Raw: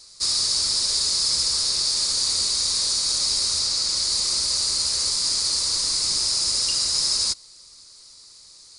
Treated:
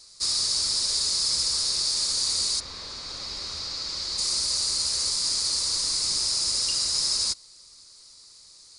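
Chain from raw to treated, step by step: 2.59–4.17 LPF 2200 Hz -> 4400 Hz 12 dB/oct; gain -3 dB

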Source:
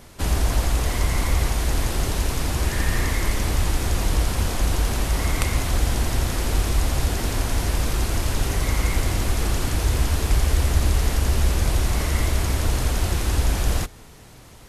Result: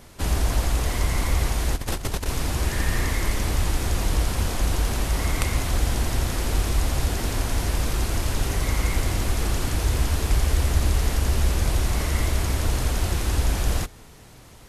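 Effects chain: 1.75–2.26 negative-ratio compressor -25 dBFS, ratio -0.5; gain -1.5 dB

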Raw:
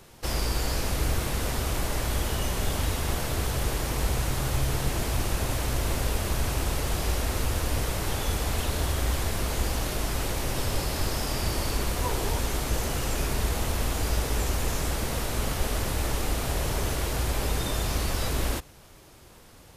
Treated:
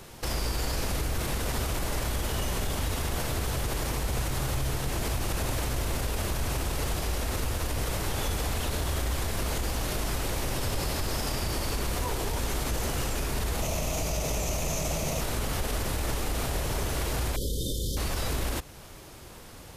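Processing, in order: 13.62–15.21 thirty-one-band EQ 160 Hz +11 dB, 630 Hz +11 dB, 1600 Hz -7 dB, 2500 Hz +6 dB, 6300 Hz +10 dB, 12500 Hz +3 dB; in parallel at -2 dB: compressor, threshold -35 dBFS, peak gain reduction 14.5 dB; on the sum: limiter -20.5 dBFS, peak gain reduction 9 dB; 17.36–17.97 brick-wall FIR band-stop 580–3000 Hz

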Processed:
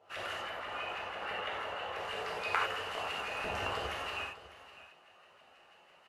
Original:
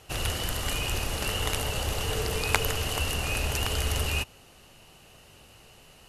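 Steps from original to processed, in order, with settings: 3.38–3.86 low shelf 400 Hz +11 dB; LFO band-pass saw up 6.1 Hz 580–2300 Hz; 0.41–1.96 tone controls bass -2 dB, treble -11 dB; echo 0.602 s -16 dB; non-linear reverb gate 0.12 s flat, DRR -4 dB; gain -3 dB

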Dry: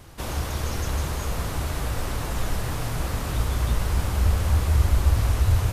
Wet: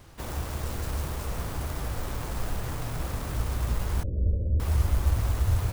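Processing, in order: tracing distortion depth 0.38 ms; 4.03–4.6 steep low-pass 580 Hz 72 dB/oct; gain -4.5 dB

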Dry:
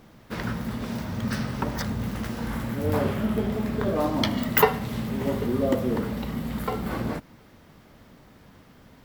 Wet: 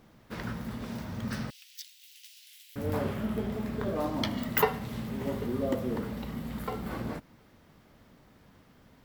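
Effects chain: 1.5–2.76 steep high-pass 2700 Hz 36 dB/oct; gain -6.5 dB

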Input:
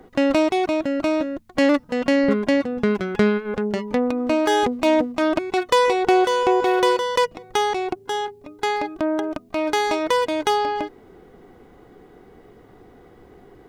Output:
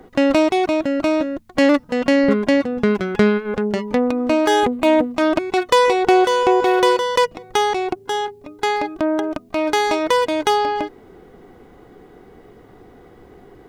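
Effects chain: 4.6–5.11 bell 5400 Hz -10.5 dB 0.53 oct; gain +3 dB

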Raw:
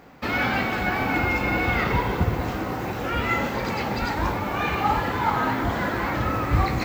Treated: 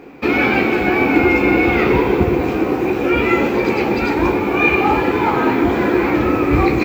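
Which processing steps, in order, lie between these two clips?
tone controls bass -2 dB, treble -3 dB; notch 600 Hz, Q 12; doubler 14 ms -10.5 dB; small resonant body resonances 350/2400 Hz, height 15 dB, ringing for 20 ms; gain +3 dB

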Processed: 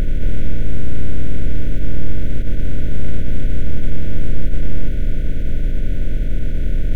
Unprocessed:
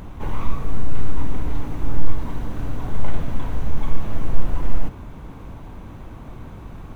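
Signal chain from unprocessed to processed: per-bin compression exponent 0.2; brick-wall FIR band-stop 660–1400 Hz; low shelf 410 Hz +4 dB; attack slew limiter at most 210 dB/s; gain -4.5 dB

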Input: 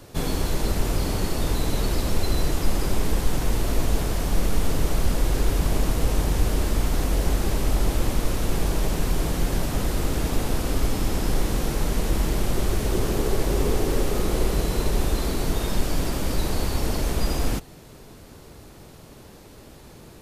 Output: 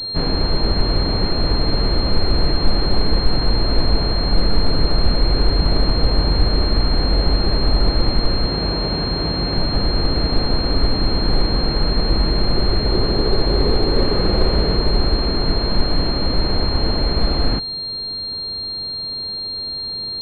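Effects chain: 8.47–9.58 HPF 57 Hz; 13.92–14.77 flutter echo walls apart 8.3 m, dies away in 0.58 s; pulse-width modulation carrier 4200 Hz; gain +5.5 dB

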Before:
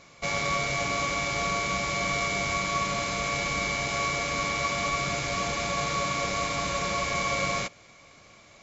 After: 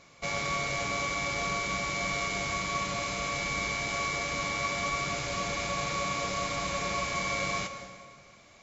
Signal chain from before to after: plate-style reverb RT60 1.7 s, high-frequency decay 0.75×, pre-delay 0.105 s, DRR 9 dB; gain -3.5 dB

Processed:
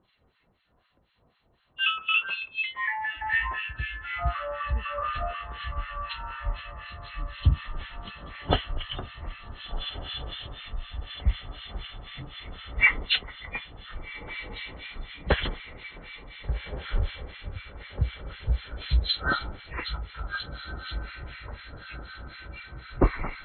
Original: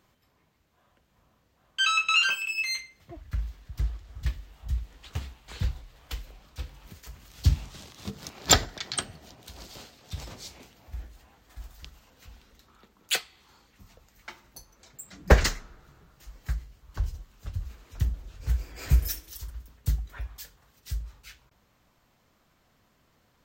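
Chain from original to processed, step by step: nonlinear frequency compression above 2700 Hz 4:1; echoes that change speed 86 ms, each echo -7 st, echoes 2; on a send: diffused feedback echo 1.537 s, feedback 66%, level -12 dB; on the sum: harmonic tremolo 4 Hz, depth 100%, crossover 1200 Hz; gain +1.5 dB

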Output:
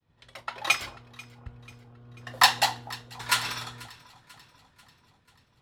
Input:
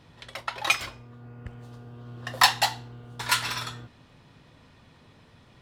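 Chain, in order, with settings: echo with dull and thin repeats by turns 0.245 s, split 1000 Hz, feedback 79%, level -14 dB; expander -51 dBFS; three-band expander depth 40%; gain -3.5 dB

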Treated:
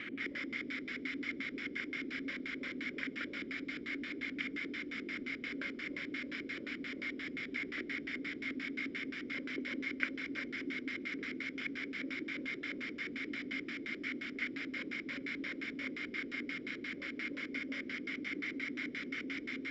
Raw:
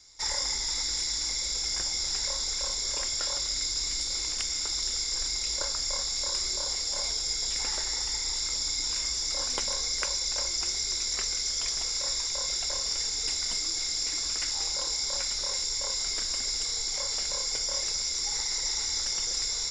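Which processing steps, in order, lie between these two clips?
low shelf 460 Hz -10.5 dB; requantised 6-bit, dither triangular; LFO low-pass square 5.7 Hz 410–1600 Hz; vowel filter i; darkening echo 0.185 s, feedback 80%, low-pass 2300 Hz, level -17 dB; gain +14 dB

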